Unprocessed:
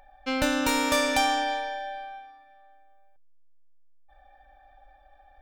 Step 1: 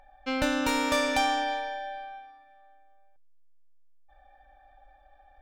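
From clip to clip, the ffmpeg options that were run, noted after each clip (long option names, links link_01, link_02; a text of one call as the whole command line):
ffmpeg -i in.wav -af "highshelf=frequency=7200:gain=-7.5,volume=-1.5dB" out.wav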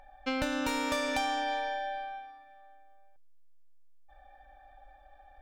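ffmpeg -i in.wav -af "acompressor=threshold=-30dB:ratio=5,volume=1.5dB" out.wav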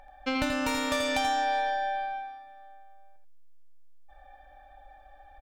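ffmpeg -i in.wav -af "aecho=1:1:83:0.501,volume=2.5dB" out.wav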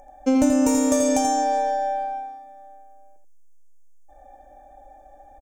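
ffmpeg -i in.wav -af "firequalizer=gain_entry='entry(170,0);entry(240,12);entry(390,12);entry(1300,-7);entry(4100,-11);entry(6400,14);entry(11000,5)':delay=0.05:min_phase=1,volume=1.5dB" out.wav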